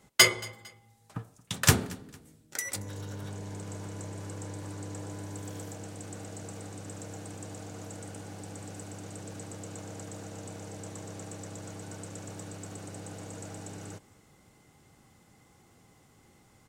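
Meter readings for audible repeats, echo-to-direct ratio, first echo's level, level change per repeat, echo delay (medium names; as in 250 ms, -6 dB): 2, -22.5 dB, -23.0 dB, -8.5 dB, 227 ms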